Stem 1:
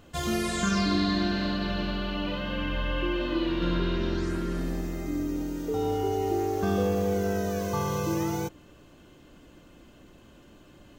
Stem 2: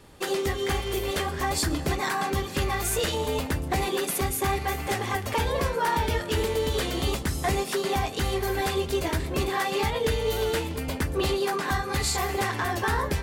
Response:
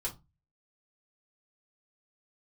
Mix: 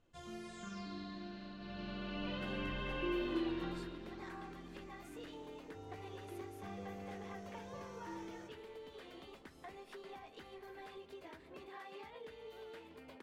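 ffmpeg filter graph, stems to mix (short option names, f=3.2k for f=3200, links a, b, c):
-filter_complex "[0:a]lowpass=8k,volume=-11.5dB,afade=t=in:st=1.56:d=0.72:silence=0.237137,afade=t=out:st=3.19:d=0.76:silence=0.237137,asplit=2[a][b];[b]volume=-7dB[c];[1:a]acompressor=threshold=-28dB:ratio=6,acrossover=split=210 3900:gain=0.158 1 0.2[d][e][f];[d][e][f]amix=inputs=3:normalize=0,adelay=2200,volume=-19dB[g];[2:a]atrim=start_sample=2205[h];[c][h]afir=irnorm=-1:irlink=0[i];[a][g][i]amix=inputs=3:normalize=0"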